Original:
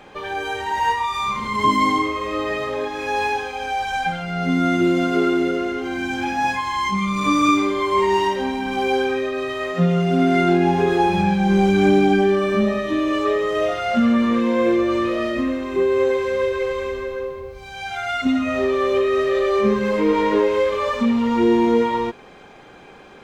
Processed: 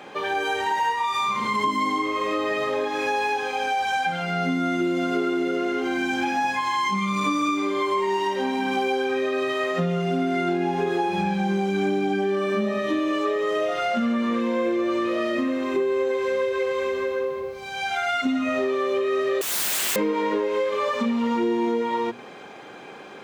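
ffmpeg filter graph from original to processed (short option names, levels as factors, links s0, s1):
-filter_complex "[0:a]asettb=1/sr,asplit=3[s0][s1][s2];[s0]atrim=end=19.414[s3];[s1]atrim=start=19.41:end=19.96,asetpts=PTS-STARTPTS,afade=t=in:d=0.004:c=qsin,afade=t=out:st=0.546:d=0.004:c=qsin,lowpass=f=2600:t=q:w=0.5098,lowpass=f=2600:t=q:w=0.6013,lowpass=f=2600:t=q:w=0.9,lowpass=f=2600:t=q:w=2.563,afreqshift=-3000,aeval=exprs='(mod(11.9*val(0)+1,2)-1)/11.9':c=same[s4];[s2]atrim=start=19.956[s5];[s3][s4]acrossfade=d=0.004:c1=hsin:c2=qsin[s6];[s6][s5]acrossfade=d=0.004:c1=qsin:c2=hsin,highpass=170,bandreject=f=60:t=h:w=6,bandreject=f=120:t=h:w=6,bandreject=f=180:t=h:w=6,bandreject=f=240:t=h:w=6,acompressor=threshold=0.0631:ratio=6,volume=1.41"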